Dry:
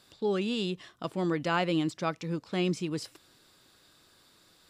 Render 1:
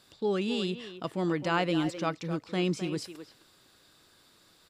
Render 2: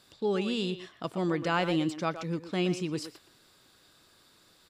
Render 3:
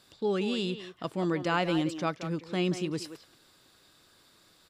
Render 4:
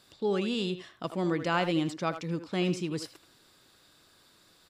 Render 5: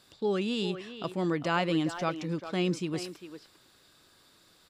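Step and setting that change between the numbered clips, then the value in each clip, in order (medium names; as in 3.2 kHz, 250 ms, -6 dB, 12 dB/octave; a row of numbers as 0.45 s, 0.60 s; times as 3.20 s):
speakerphone echo, time: 260 ms, 120 ms, 180 ms, 80 ms, 400 ms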